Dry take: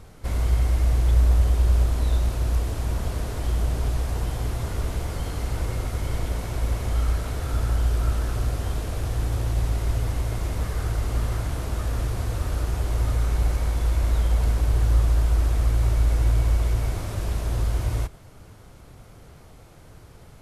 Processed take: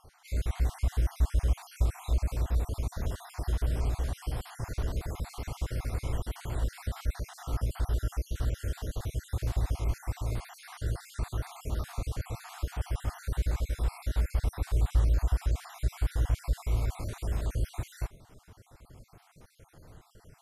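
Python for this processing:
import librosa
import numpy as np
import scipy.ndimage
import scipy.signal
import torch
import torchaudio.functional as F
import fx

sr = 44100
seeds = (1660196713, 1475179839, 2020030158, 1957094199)

y = fx.spec_dropout(x, sr, seeds[0], share_pct=49)
y = F.gain(torch.from_numpy(y), -4.5).numpy()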